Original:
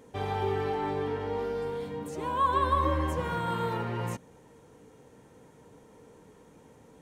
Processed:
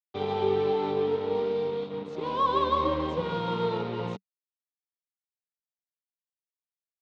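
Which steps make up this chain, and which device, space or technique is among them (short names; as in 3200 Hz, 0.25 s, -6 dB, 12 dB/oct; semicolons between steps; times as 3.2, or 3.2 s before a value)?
blown loudspeaker (crossover distortion -42.5 dBFS; speaker cabinet 130–4600 Hz, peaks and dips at 190 Hz +6 dB, 440 Hz +7 dB, 1700 Hz -10 dB, 3700 Hz +7 dB); gain +2 dB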